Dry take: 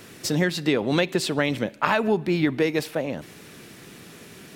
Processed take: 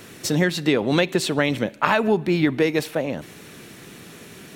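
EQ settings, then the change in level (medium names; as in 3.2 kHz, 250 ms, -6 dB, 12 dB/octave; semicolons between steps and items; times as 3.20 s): band-stop 4.9 kHz, Q 14; +2.5 dB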